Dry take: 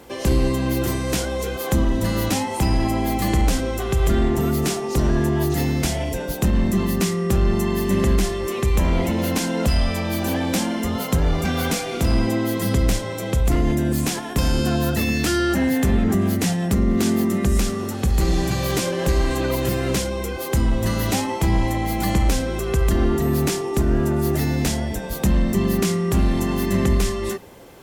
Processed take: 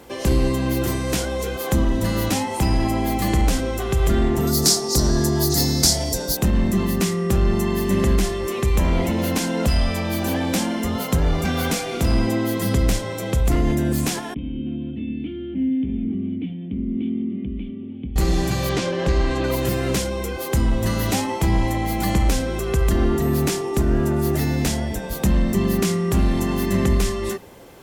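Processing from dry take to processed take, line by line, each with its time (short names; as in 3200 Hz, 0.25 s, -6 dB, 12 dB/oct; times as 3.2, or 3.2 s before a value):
4.47–6.37 resonant high shelf 3600 Hz +9 dB, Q 3
14.34–18.16 vocal tract filter i
18.69–19.44 LPF 5200 Hz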